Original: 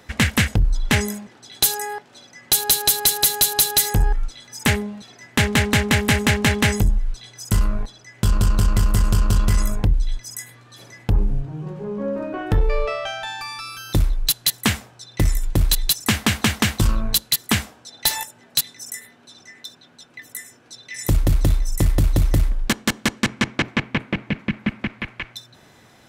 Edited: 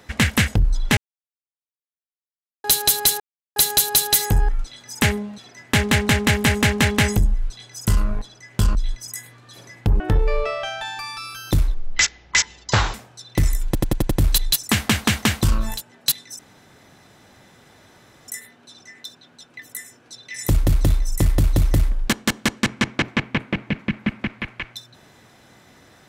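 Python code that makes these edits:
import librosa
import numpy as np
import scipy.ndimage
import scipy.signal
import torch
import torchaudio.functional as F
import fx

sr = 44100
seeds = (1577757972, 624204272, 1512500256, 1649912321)

y = fx.edit(x, sr, fx.silence(start_s=0.97, length_s=1.67),
    fx.insert_silence(at_s=3.2, length_s=0.36),
    fx.cut(start_s=8.39, length_s=1.59),
    fx.cut(start_s=11.23, length_s=1.19),
    fx.speed_span(start_s=14.16, length_s=0.6, speed=0.5),
    fx.stutter(start_s=15.48, slice_s=0.09, count=6),
    fx.cut(start_s=17.09, length_s=1.12, crossfade_s=0.24),
    fx.insert_room_tone(at_s=18.88, length_s=1.89), tone=tone)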